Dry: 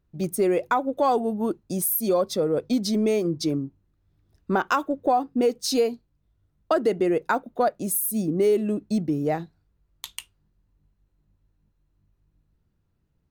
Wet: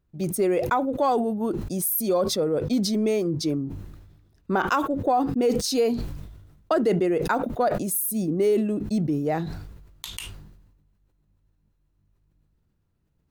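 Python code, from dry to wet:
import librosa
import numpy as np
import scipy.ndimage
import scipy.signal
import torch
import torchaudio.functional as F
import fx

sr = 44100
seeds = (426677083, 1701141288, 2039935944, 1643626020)

y = fx.sustainer(x, sr, db_per_s=48.0)
y = y * librosa.db_to_amplitude(-1.0)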